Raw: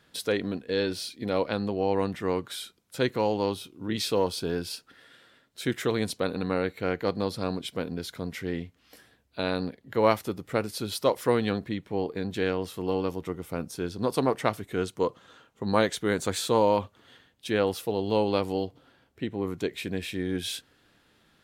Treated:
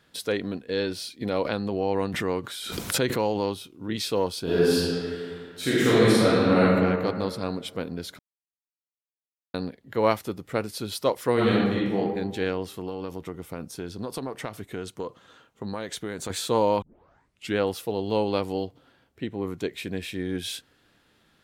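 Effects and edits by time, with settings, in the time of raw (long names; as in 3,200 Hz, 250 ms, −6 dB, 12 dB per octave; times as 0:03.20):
0:01.21–0:03.76: background raised ahead of every attack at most 36 dB per second
0:04.43–0:06.62: thrown reverb, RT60 2.1 s, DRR −9.5 dB
0:08.19–0:09.54: silence
0:11.33–0:11.97: thrown reverb, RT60 1.2 s, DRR −6 dB
0:12.70–0:16.30: downward compressor, threshold −28 dBFS
0:16.82: tape start 0.75 s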